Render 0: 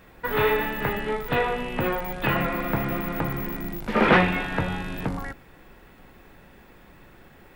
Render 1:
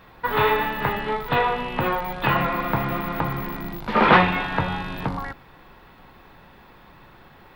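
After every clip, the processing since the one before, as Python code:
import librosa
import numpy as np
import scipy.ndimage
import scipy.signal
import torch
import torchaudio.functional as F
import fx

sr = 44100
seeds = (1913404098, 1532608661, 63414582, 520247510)

y = fx.graphic_eq(x, sr, hz=(125, 1000, 4000, 8000), db=(4, 9, 8, -8))
y = y * librosa.db_to_amplitude(-1.5)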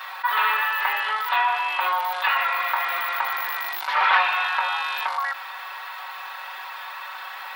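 y = scipy.signal.sosfilt(scipy.signal.butter(4, 880.0, 'highpass', fs=sr, output='sos'), x)
y = y + 0.97 * np.pad(y, (int(5.3 * sr / 1000.0), 0))[:len(y)]
y = fx.env_flatten(y, sr, amount_pct=50)
y = y * librosa.db_to_amplitude(-5.0)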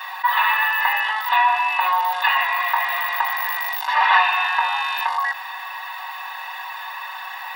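y = x + 0.91 * np.pad(x, (int(1.1 * sr / 1000.0), 0))[:len(x)]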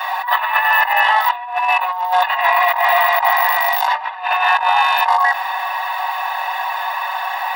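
y = fx.highpass_res(x, sr, hz=650.0, q=5.4)
y = fx.over_compress(y, sr, threshold_db=-18.0, ratio=-0.5)
y = y * librosa.db_to_amplitude(3.0)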